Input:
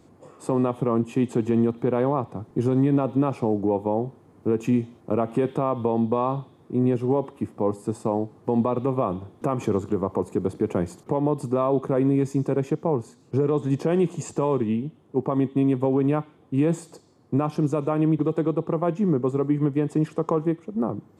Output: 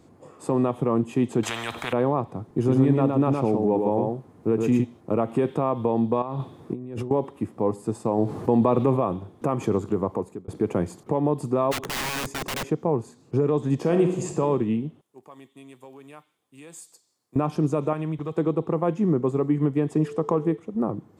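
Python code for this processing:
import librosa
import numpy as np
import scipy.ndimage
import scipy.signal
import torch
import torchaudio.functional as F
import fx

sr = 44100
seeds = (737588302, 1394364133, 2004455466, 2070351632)

y = fx.spectral_comp(x, sr, ratio=10.0, at=(1.43, 1.93))
y = fx.echo_single(y, sr, ms=115, db=-3.5, at=(2.64, 4.83), fade=0.02)
y = fx.over_compress(y, sr, threshold_db=-32.0, ratio=-1.0, at=(6.22, 7.11))
y = fx.env_flatten(y, sr, amount_pct=50, at=(8.17, 8.96), fade=0.02)
y = fx.overflow_wrap(y, sr, gain_db=24.0, at=(11.71, 12.67), fade=0.02)
y = fx.reverb_throw(y, sr, start_s=13.79, length_s=0.6, rt60_s=0.83, drr_db=4.5)
y = fx.pre_emphasis(y, sr, coefficient=0.97, at=(15.01, 17.36))
y = fx.peak_eq(y, sr, hz=310.0, db=-11.0, octaves=1.9, at=(17.93, 18.37))
y = fx.dmg_tone(y, sr, hz=440.0, level_db=-34.0, at=(19.94, 20.56), fade=0.02)
y = fx.edit(y, sr, fx.fade_out_span(start_s=10.08, length_s=0.4), tone=tone)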